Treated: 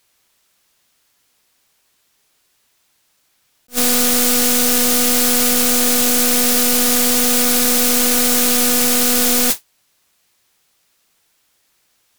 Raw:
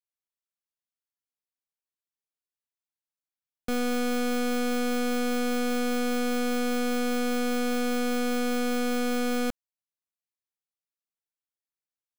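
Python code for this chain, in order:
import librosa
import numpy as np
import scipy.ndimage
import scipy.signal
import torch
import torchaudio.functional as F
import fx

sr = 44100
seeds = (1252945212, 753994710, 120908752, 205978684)

y = fx.high_shelf(x, sr, hz=5600.0, db=-8.5)
y = fx.mod_noise(y, sr, seeds[0], snr_db=20)
y = fx.fold_sine(y, sr, drive_db=20, ceiling_db=-23.0)
y = fx.high_shelf(y, sr, hz=2800.0, db=7.5)
y = fx.attack_slew(y, sr, db_per_s=420.0)
y = y * librosa.db_to_amplitude(8.0)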